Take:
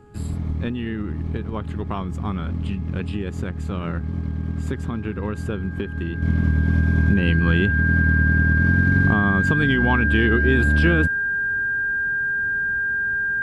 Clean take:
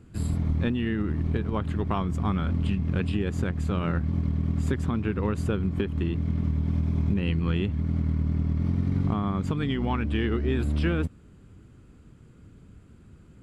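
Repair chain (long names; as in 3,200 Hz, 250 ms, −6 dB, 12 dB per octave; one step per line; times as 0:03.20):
hum removal 415.9 Hz, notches 4
notch filter 1,600 Hz, Q 30
level 0 dB, from 0:06.22 −7 dB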